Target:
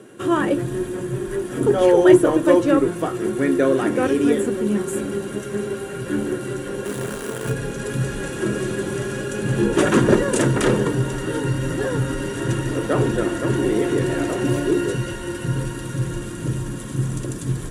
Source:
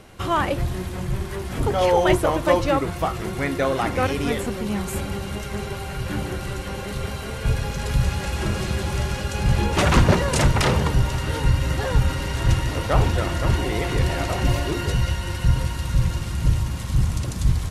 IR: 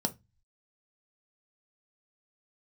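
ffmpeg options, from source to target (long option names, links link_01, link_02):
-filter_complex "[0:a]equalizer=frequency=900:width=0.83:gain=-8,asettb=1/sr,asplit=3[link_01][link_02][link_03];[link_01]atrim=end=6.844[link_04];[link_02]atrim=start=6.84:end=7.52,asetpts=PTS-STARTPTS,afade=type=in:duration=0.004:curve=qsin,afade=type=out:start_time=0.676:duration=0.004:curve=qsin,acrusher=bits=6:dc=4:mix=0:aa=0.000001[link_05];[link_03]atrim=start=7.516[link_06];[link_04][link_05]acrossfade=duration=0.004:curve1=hsin:curve2=qsin[link_07];[link_07][link_06]acrossfade=duration=0.004:curve1=qsin:curve2=hsin[link_08];[1:a]atrim=start_sample=2205,asetrate=79380,aresample=44100[link_09];[link_08][link_09]afir=irnorm=-1:irlink=0,volume=1dB"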